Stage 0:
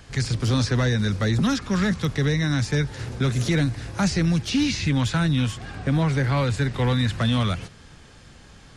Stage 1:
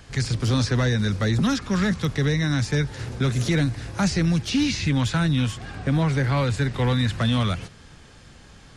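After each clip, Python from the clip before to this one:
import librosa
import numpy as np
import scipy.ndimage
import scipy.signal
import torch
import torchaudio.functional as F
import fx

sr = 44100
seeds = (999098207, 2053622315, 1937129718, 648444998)

y = x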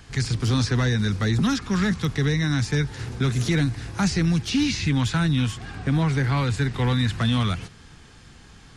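y = fx.peak_eq(x, sr, hz=570.0, db=-8.5, octaves=0.32)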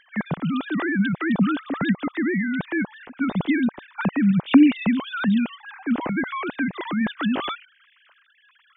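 y = fx.sine_speech(x, sr)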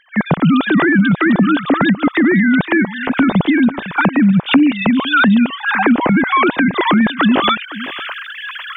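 y = fx.recorder_agc(x, sr, target_db=-7.5, rise_db_per_s=51.0, max_gain_db=30)
y = y + 10.0 ** (-16.0 / 20.0) * np.pad(y, (int(506 * sr / 1000.0), 0))[:len(y)]
y = F.gain(torch.from_numpy(y), 1.5).numpy()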